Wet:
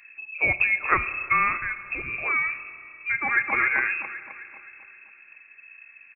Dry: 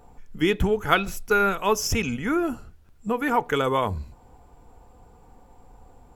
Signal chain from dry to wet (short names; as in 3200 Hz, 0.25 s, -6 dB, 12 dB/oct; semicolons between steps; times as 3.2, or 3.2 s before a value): 1.61–2.14 compressor, threshold -27 dBFS, peak gain reduction 10.5 dB; Schroeder reverb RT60 3.2 s, combs from 25 ms, DRR 13 dB; inverted band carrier 2600 Hz; 3.09–3.53 echo throw 0.26 s, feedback 50%, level -3.5 dB; gain -1.5 dB